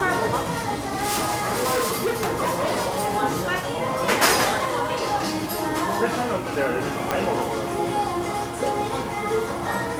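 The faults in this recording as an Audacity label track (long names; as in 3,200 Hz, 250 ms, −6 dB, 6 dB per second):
0.800000	3.130000	clipping −19 dBFS
7.110000	7.110000	click −7 dBFS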